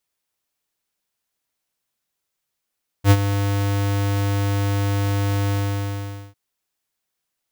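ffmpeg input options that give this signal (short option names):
-f lavfi -i "aevalsrc='0.335*(2*lt(mod(100*t,1),0.5)-1)':d=3.302:s=44100,afade=t=in:d=0.068,afade=t=out:st=0.068:d=0.052:silence=0.282,afade=t=out:st=2.47:d=0.832"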